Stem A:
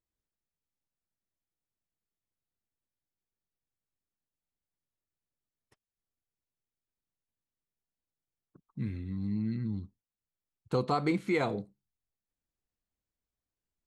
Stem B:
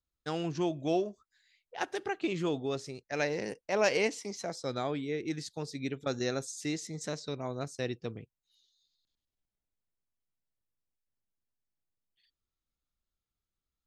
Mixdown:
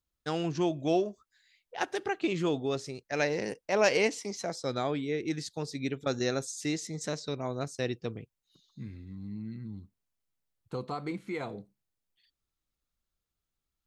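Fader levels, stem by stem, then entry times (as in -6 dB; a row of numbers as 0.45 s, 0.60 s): -7.0 dB, +2.5 dB; 0.00 s, 0.00 s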